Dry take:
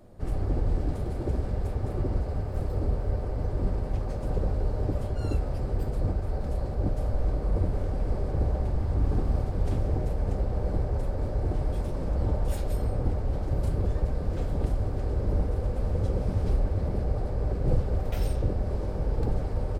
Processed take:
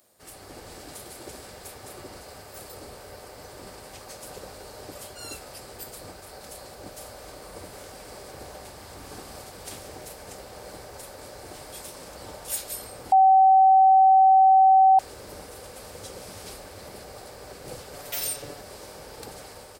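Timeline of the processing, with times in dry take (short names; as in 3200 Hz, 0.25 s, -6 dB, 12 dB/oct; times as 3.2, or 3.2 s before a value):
13.12–14.99 bleep 765 Hz -8.5 dBFS
17.93–18.61 comb 7 ms, depth 78%
whole clip: differentiator; AGC gain up to 4 dB; gain +11.5 dB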